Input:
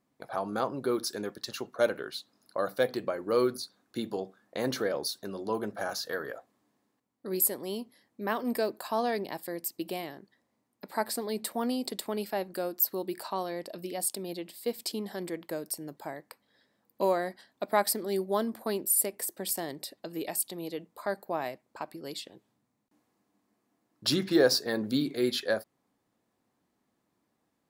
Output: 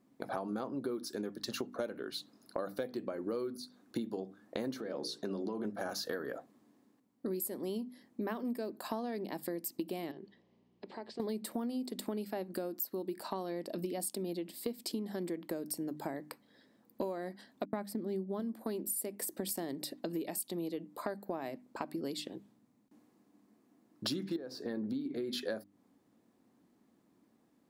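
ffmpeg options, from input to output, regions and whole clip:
-filter_complex "[0:a]asettb=1/sr,asplit=3[a][b][c];[a]atrim=end=4.804[d];[b]atrim=start=4.8:end=5.65,asetpts=PTS-STARTPTS,afade=t=in:d=0.004:c=qsin,afade=t=out:st=0.846:d=0.004:c=qsin,acompressor=threshold=-33dB:ratio=4:attack=3.2:release=140:knee=1:detection=peak,highpass=120,lowpass=7.6k,bandreject=f=60:t=h:w=6,bandreject=f=120:t=h:w=6,bandreject=f=180:t=h:w=6,bandreject=f=240:t=h:w=6,bandreject=f=300:t=h:w=6,bandreject=f=360:t=h:w=6,bandreject=f=420:t=h:w=6,bandreject=f=480:t=h:w=6,bandreject=f=540:t=h:w=6,bandreject=f=600:t=h:w=6[e];[c]atrim=start=5.646[f];[d][e]acrossfade=d=0.004:c1=hsin:c2=qsin[g];[g][f]acrossfade=d=0.004:c1=qsin:c2=hsin,asettb=1/sr,asplit=3[h][i][j];[h]atrim=end=10.114[k];[i]atrim=start=10.11:end=11.2,asetpts=PTS-STARTPTS,afade=t=in:d=0.004:c=qsin,afade=t=out:st=1.086:d=0.004:c=qsin,acompressor=threshold=-53dB:ratio=2.5:attack=3.2:release=140:knee=1:detection=peak,aeval=exprs='val(0)+0.000316*(sin(2*PI*60*n/s)+sin(2*PI*2*60*n/s)/2+sin(2*PI*3*60*n/s)/3+sin(2*PI*4*60*n/s)/4+sin(2*PI*5*60*n/s)/5)':c=same,highpass=170,equalizer=f=260:t=q:w=4:g=-7,equalizer=f=390:t=q:w=4:g=7,equalizer=f=1.4k:t=q:w=4:g=-7,equalizer=f=3k:t=q:w=4:g=8,lowpass=f=5.3k:w=0.5412,lowpass=f=5.3k:w=1.3066[l];[j]atrim=start=11.196[m];[k][l]acrossfade=d=0.004:c1=hsin:c2=qsin[n];[n][m]acrossfade=d=0.004:c1=qsin:c2=hsin,asettb=1/sr,asplit=3[o][p][q];[o]atrim=end=17.654[r];[p]atrim=start=17.65:end=18.4,asetpts=PTS-STARTPTS,afade=t=in:d=0.004:c=qsin,afade=t=out:st=0.746:d=0.004:c=qsin,bass=f=250:g=11,treble=f=4k:g=-7,agate=range=-33dB:threshold=-35dB:ratio=3:release=100:detection=peak[s];[q]atrim=start=18.396[t];[r][s]acrossfade=d=0.004:c1=hsin:c2=qsin[u];[u][t]acrossfade=d=0.004:c1=qsin:c2=hsin,asettb=1/sr,asplit=3[v][w][x];[v]atrim=end=24.364[y];[w]atrim=start=24.36:end=25.33,asetpts=PTS-STARTPTS,afade=t=in:d=0.004:c=qsin,afade=t=out:st=0.966:d=0.004:c=qsin,highshelf=f=4.3k:g=-11,acompressor=threshold=-34dB:ratio=2.5:attack=3.2:release=140:knee=1:detection=peak[z];[x]atrim=start=25.326[aa];[y][z]acrossfade=d=0.004:c1=hsin:c2=qsin[ab];[ab][aa]acrossfade=d=0.004:c1=qsin:c2=hsin,equalizer=f=250:w=0.96:g=11,bandreject=f=50:t=h:w=6,bandreject=f=100:t=h:w=6,bandreject=f=150:t=h:w=6,bandreject=f=200:t=h:w=6,bandreject=f=250:t=h:w=6,bandreject=f=300:t=h:w=6,acompressor=threshold=-35dB:ratio=12,volume=1dB"

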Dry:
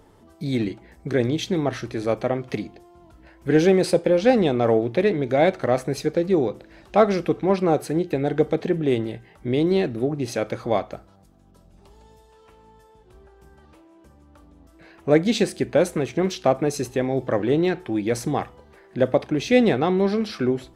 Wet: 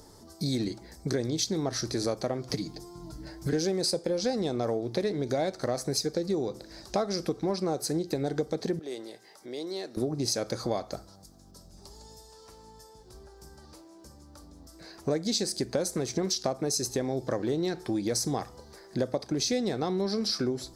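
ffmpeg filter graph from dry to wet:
-filter_complex "[0:a]asettb=1/sr,asplit=3[a][b][c];[a]atrim=end=2.494[d];[b]atrim=start=2.49:end=3.53,asetpts=PTS-STARTPTS,afade=t=in:d=0.004:c=qsin,afade=t=out:st=1.036:d=0.004:c=qsin,lowshelf=f=340:g=9.5,aecho=1:1:6.6:0.8,atrim=end_sample=45864,acrossover=split=280|940[e][f][g];[e]acompressor=threshold=-31dB:ratio=4[h];[f]acompressor=threshold=-36dB:ratio=4[i];[g]acompressor=threshold=-39dB:ratio=4[j];[h][i][j]amix=inputs=3:normalize=0[k];[c]atrim=start=3.526[l];[d][k]acrossfade=d=0.004:c1=hsin:c2=qsin[m];[m][l]acrossfade=d=0.004:c1=qsin:c2=hsin,asettb=1/sr,asplit=3[n][o][p];[n]atrim=end=8.794[q];[o]atrim=start=8.79:end=9.97,asetpts=PTS-STARTPTS,afade=t=in:d=0.004:c=qsin,afade=t=out:st=1.176:d=0.004:c=qsin,highpass=440,acompressor=threshold=-52dB:ratio=1.5:attack=3.2:release=140:knee=1:detection=peak[r];[p]atrim=start=9.966[s];[q][r]acrossfade=d=0.004:c1=hsin:c2=qsin[t];[t][s]acrossfade=d=0.004:c1=qsin:c2=hsin,highshelf=f=3.7k:t=q:w=3:g=9.5,acompressor=threshold=-26dB:ratio=6"

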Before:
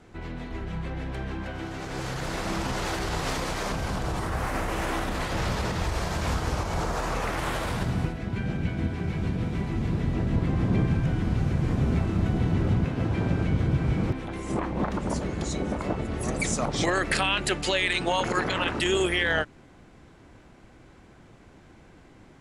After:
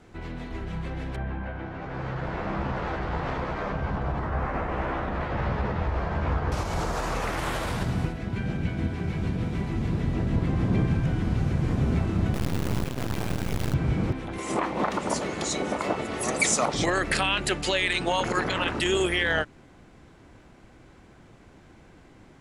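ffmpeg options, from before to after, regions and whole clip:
-filter_complex "[0:a]asettb=1/sr,asplit=3[a][b][c];[a]atrim=end=1.164[d];[b]atrim=start=1.16:end=6.52,asetpts=PTS-STARTPTS,afade=t=in:d=0.004:c=qsin,afade=t=out:st=5.356:d=0.004:c=qsin,lowpass=1.8k,asplit=2[e][f];[f]adelay=14,volume=-6dB[g];[e][g]amix=inputs=2:normalize=0,atrim=end_sample=236376[h];[c]atrim=start=6.516[i];[d][h]acrossfade=d=0.004:c1=hsin:c2=qsin[j];[j][i]acrossfade=d=0.004:c1=qsin:c2=hsin,asettb=1/sr,asplit=3[k][l][m];[k]atrim=end=12.344[n];[l]atrim=start=12.34:end=13.74,asetpts=PTS-STARTPTS,afade=t=in:d=0.004:c=qsin,afade=t=out:st=1.396:d=0.004:c=qsin,aeval=exprs='max(val(0),0)':c=same,aeval=exprs='val(0)+0.002*(sin(2*PI*60*n/s)+sin(2*PI*2*60*n/s)/2+sin(2*PI*3*60*n/s)/3+sin(2*PI*4*60*n/s)/4+sin(2*PI*5*60*n/s)/5)':c=same,acrusher=bits=2:mode=log:mix=0:aa=0.000001[o];[m]atrim=start=13.736[p];[n][o]acrossfade=d=0.004:c1=hsin:c2=qsin[q];[q][p]acrossfade=d=0.004:c1=qsin:c2=hsin,asettb=1/sr,asplit=3[r][s][t];[r]atrim=end=14.384[u];[s]atrim=start=14.38:end=16.74,asetpts=PTS-STARTPTS,afade=t=in:d=0.004:c=qsin,afade=t=out:st=2.356:d=0.004:c=qsin,highpass=f=600:p=1,bandreject=f=1.6k:w=16,acontrast=77[v];[t]atrim=start=16.736[w];[u][v]acrossfade=d=0.004:c1=hsin:c2=qsin[x];[x][w]acrossfade=d=0.004:c1=qsin:c2=hsin"

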